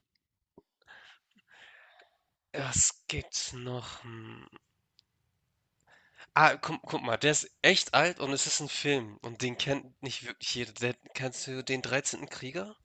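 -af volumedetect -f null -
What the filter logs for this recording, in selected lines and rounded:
mean_volume: -33.1 dB
max_volume: -5.1 dB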